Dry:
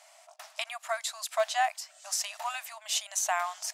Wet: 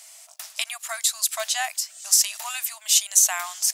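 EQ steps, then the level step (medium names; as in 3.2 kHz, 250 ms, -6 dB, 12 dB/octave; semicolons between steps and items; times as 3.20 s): tilt EQ +5.5 dB/octave; -1.5 dB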